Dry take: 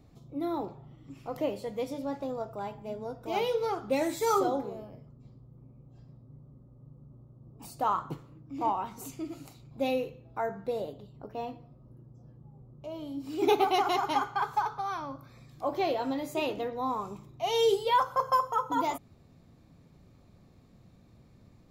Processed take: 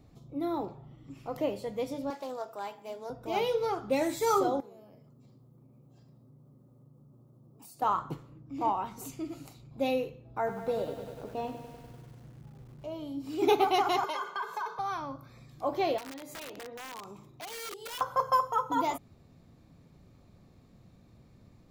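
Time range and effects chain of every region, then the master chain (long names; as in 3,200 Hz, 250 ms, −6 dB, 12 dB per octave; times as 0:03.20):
0:02.10–0:03.10: high-pass filter 240 Hz + spectral tilt +2.5 dB per octave + highs frequency-modulated by the lows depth 0.13 ms
0:04.60–0:07.82: high-pass filter 140 Hz + high-shelf EQ 5,500 Hz +10.5 dB + downward compressor 2.5 to 1, threshold −54 dBFS
0:10.27–0:12.94: low-shelf EQ 380 Hz +2.5 dB + feedback echo at a low word length 98 ms, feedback 80%, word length 9 bits, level −9.5 dB
0:14.04–0:14.79: Butterworth high-pass 170 Hz 96 dB per octave + comb filter 1.9 ms, depth 90% + downward compressor 5 to 1, threshold −31 dBFS
0:15.98–0:18.01: downward compressor 4 to 1, threshold −41 dBFS + wrap-around overflow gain 36 dB + low-shelf EQ 110 Hz −10.5 dB
whole clip: no processing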